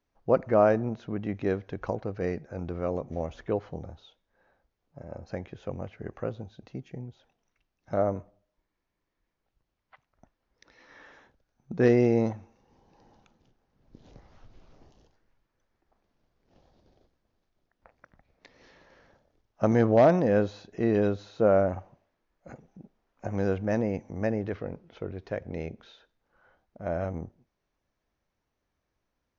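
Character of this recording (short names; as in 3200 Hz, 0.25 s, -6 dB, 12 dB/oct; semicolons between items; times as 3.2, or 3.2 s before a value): noise floor -82 dBFS; spectral tilt -5.5 dB/oct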